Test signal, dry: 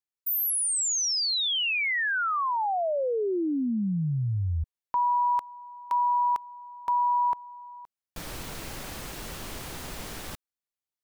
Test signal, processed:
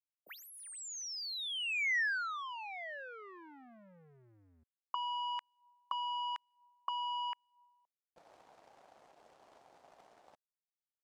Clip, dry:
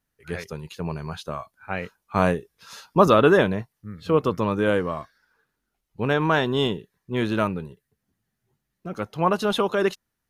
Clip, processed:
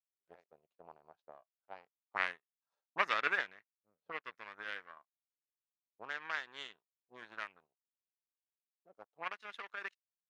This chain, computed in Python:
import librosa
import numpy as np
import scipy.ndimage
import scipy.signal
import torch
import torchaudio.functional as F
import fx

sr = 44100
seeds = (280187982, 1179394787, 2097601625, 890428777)

y = fx.power_curve(x, sr, exponent=2.0)
y = fx.auto_wah(y, sr, base_hz=560.0, top_hz=1900.0, q=2.6, full_db=-31.5, direction='up')
y = fx.peak_eq(y, sr, hz=6800.0, db=8.0, octaves=1.9)
y = F.gain(torch.from_numpy(y), -1.5).numpy()